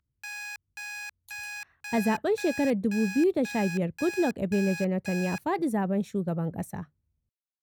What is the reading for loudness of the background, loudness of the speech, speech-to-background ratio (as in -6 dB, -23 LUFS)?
-38.0 LUFS, -28.0 LUFS, 10.0 dB